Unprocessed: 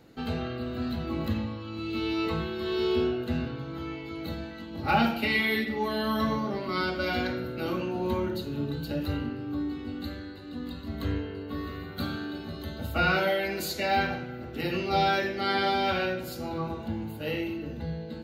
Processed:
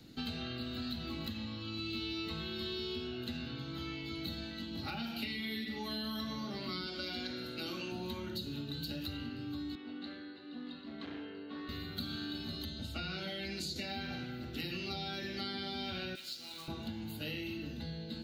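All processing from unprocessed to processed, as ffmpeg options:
ffmpeg -i in.wav -filter_complex "[0:a]asettb=1/sr,asplit=3[link_01][link_02][link_03];[link_01]atrim=end=6.864[link_04];[link_02]atrim=start=6.86:end=7.92,asetpts=PTS-STARTPTS,afade=type=in:duration=0.004:curve=qsin,afade=type=out:start_time=1.056:duration=0.004:curve=qsin,lowpass=11000,bass=frequency=250:gain=-14,treble=frequency=4000:gain=4[link_05];[link_03]atrim=start=7.916[link_06];[link_04][link_05]acrossfade=duration=0.004:curve1=hsin:curve2=qsin[link_07];[link_07][link_06]acrossfade=duration=0.004:curve1=qsin:curve2=hsin,asettb=1/sr,asplit=3[link_08][link_09][link_10];[link_08]atrim=end=9.754[link_11];[link_09]atrim=start=9.75:end=11.69,asetpts=PTS-STARTPTS,afade=type=in:duration=0.004:curve=qsin,afade=type=out:start_time=1.936:duration=0.004:curve=qsin,asoftclip=type=hard:threshold=-30dB,highpass=400,lowpass=2200[link_12];[link_10]atrim=start=11.686[link_13];[link_11][link_12]acrossfade=duration=0.004:curve1=hsin:curve2=qsin[link_14];[link_14][link_13]acrossfade=duration=0.004:curve1=qsin:curve2=hsin,asettb=1/sr,asplit=3[link_15][link_16][link_17];[link_15]atrim=end=12.654[link_18];[link_16]atrim=start=12.65:end=13.76,asetpts=PTS-STARTPTS,afade=type=in:duration=0.004:curve=qsin,afade=type=out:start_time=1.106:duration=0.004:curve=qsin,lowpass=7200,equalizer=frequency=1100:width=0.32:gain=-6.5[link_19];[link_17]atrim=start=13.756[link_20];[link_18][link_19]acrossfade=duration=0.004:curve1=hsin:curve2=qsin[link_21];[link_21][link_20]acrossfade=duration=0.004:curve1=qsin:curve2=hsin,asettb=1/sr,asplit=3[link_22][link_23][link_24];[link_22]atrim=end=16.154[link_25];[link_23]atrim=start=16.15:end=16.68,asetpts=PTS-STARTPTS,afade=type=in:duration=0.004:curve=qsin,afade=type=out:start_time=0.526:duration=0.004:curve=qsin,bandpass=frequency=3400:width_type=q:width=0.99,acrusher=bits=2:mode=log:mix=0:aa=0.000001[link_26];[link_24]atrim=start=16.676[link_27];[link_25][link_26]acrossfade=duration=0.004:curve1=hsin:curve2=qsin[link_28];[link_28][link_27]acrossfade=duration=0.004:curve1=qsin:curve2=hsin,acompressor=threshold=-29dB:ratio=6,equalizer=frequency=250:width_type=o:width=1:gain=3,equalizer=frequency=500:width_type=o:width=1:gain=-9,equalizer=frequency=1000:width_type=o:width=1:gain=-8,equalizer=frequency=2000:width_type=o:width=1:gain=-4,equalizer=frequency=4000:width_type=o:width=1:gain=7,acrossover=split=270|580[link_29][link_30][link_31];[link_29]acompressor=threshold=-45dB:ratio=4[link_32];[link_30]acompressor=threshold=-49dB:ratio=4[link_33];[link_31]acompressor=threshold=-41dB:ratio=4[link_34];[link_32][link_33][link_34]amix=inputs=3:normalize=0,volume=1dB" out.wav

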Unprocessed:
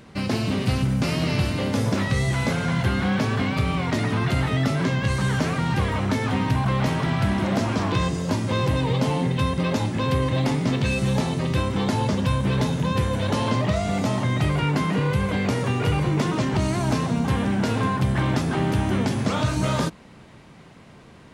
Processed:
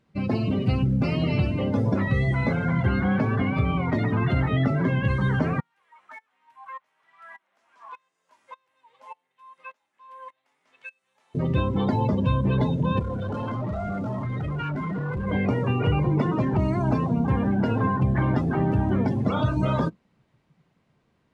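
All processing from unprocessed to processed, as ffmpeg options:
ffmpeg -i in.wav -filter_complex "[0:a]asettb=1/sr,asplit=3[link_01][link_02][link_03];[link_01]atrim=end=5.604[link_04];[link_02]atrim=start=5.6:end=11.35,asetpts=PTS-STARTPTS,afade=type=in:duration=0.004:curve=qsin,afade=type=out:start_time=5.746:duration=0.004:curve=qsin,highpass=1100,equalizer=frequency=4500:width=1.2:gain=-8,aeval=exprs='val(0)*pow(10,-22*if(lt(mod(-1.7*n/s,1),2*abs(-1.7)/1000),1-mod(-1.7*n/s,1)/(2*abs(-1.7)/1000),(mod(-1.7*n/s,1)-2*abs(-1.7)/1000)/(1-2*abs(-1.7)/1000))/20)':channel_layout=same[link_05];[link_03]atrim=start=11.346[link_06];[link_04][link_05]acrossfade=duration=0.004:curve1=hsin:curve2=qsin[link_07];[link_07][link_06]acrossfade=duration=0.004:curve1=qsin:curve2=hsin,asettb=1/sr,asplit=3[link_08][link_09][link_10];[link_08]atrim=end=12.994[link_11];[link_09]atrim=start=12.99:end=15.27,asetpts=PTS-STARTPTS,afade=type=in:duration=0.004:curve=qsin,afade=type=out:start_time=2.276:duration=0.004:curve=qsin,equalizer=frequency=1400:width=7.4:gain=8.5,asoftclip=type=hard:threshold=-26dB[link_12];[link_10]atrim=start=15.266[link_13];[link_11][link_12]acrossfade=duration=0.004:curve1=hsin:curve2=qsin[link_14];[link_14][link_13]acrossfade=duration=0.004:curve1=qsin:curve2=hsin,afftdn=noise_reduction=21:noise_floor=-28,highshelf=frequency=8800:gain=-7.5" out.wav

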